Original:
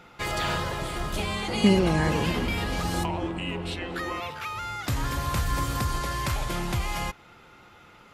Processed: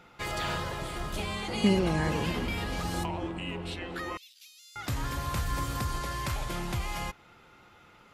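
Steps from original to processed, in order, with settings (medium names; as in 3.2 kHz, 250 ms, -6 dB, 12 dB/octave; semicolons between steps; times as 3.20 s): 4.17–4.76 s: inverse Chebyshev high-pass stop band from 880 Hz, stop band 70 dB; trim -4.5 dB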